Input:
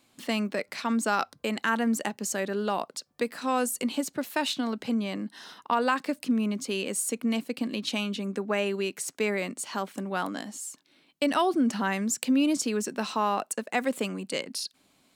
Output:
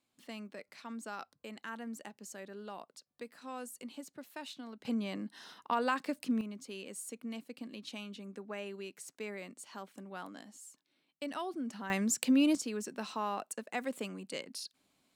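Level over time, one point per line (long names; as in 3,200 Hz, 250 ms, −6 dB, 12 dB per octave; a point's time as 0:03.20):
−17 dB
from 0:04.85 −6.5 dB
from 0:06.41 −14.5 dB
from 0:11.90 −3 dB
from 0:12.55 −9.5 dB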